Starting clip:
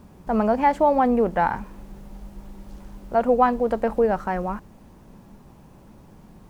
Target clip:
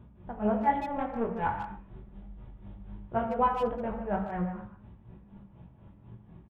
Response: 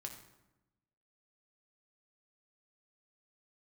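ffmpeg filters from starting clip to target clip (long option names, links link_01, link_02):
-filter_complex "[0:a]equalizer=frequency=92:width_type=o:width=1.6:gain=12,asettb=1/sr,asplit=3[link_01][link_02][link_03];[link_01]atrim=end=2.054[link_04];[link_02]atrim=start=2.05:end=2.47,asetpts=PTS-STARTPTS,afade=type=in:duration=0.004:curve=qsin,afade=type=out:start_time=0.416:duration=0.004:curve=qsin,agate=range=-33dB:threshold=-32dB:ratio=3:detection=peak[link_05];[link_03]atrim=start=2.466[link_06];[link_04][link_05]acrossfade=duration=0.004:curve1=hsin:curve2=qsin[link_07];[link_07][link_06]acrossfade=duration=0.004:curve1=qsin:curve2=hsin,flanger=delay=17.5:depth=3.3:speed=1.6,tremolo=f=4.1:d=0.95,asplit=3[link_08][link_09][link_10];[link_08]afade=type=out:start_time=0.79:duration=0.02[link_11];[link_09]aeval=exprs='(tanh(7.08*val(0)+0.6)-tanh(0.6))/7.08':channel_layout=same,afade=type=in:start_time=0.79:duration=0.02,afade=type=out:start_time=1.45:duration=0.02[link_12];[link_10]afade=type=in:start_time=1.45:duration=0.02[link_13];[link_11][link_12][link_13]amix=inputs=3:normalize=0,asplit=3[link_14][link_15][link_16];[link_14]afade=type=out:start_time=3.13:duration=0.02[link_17];[link_15]asplit=2[link_18][link_19];[link_19]adelay=14,volume=-4.5dB[link_20];[link_18][link_20]amix=inputs=2:normalize=0,afade=type=in:start_time=3.13:duration=0.02,afade=type=out:start_time=3.65:duration=0.02[link_21];[link_16]afade=type=in:start_time=3.65:duration=0.02[link_22];[link_17][link_21][link_22]amix=inputs=3:normalize=0[link_23];[1:a]atrim=start_sample=2205,afade=type=out:start_time=0.19:duration=0.01,atrim=end_sample=8820[link_24];[link_23][link_24]afir=irnorm=-1:irlink=0,aresample=8000,aresample=44100,asplit=2[link_25][link_26];[link_26]adelay=150,highpass=300,lowpass=3400,asoftclip=type=hard:threshold=-23.5dB,volume=-9dB[link_27];[link_25][link_27]amix=inputs=2:normalize=0"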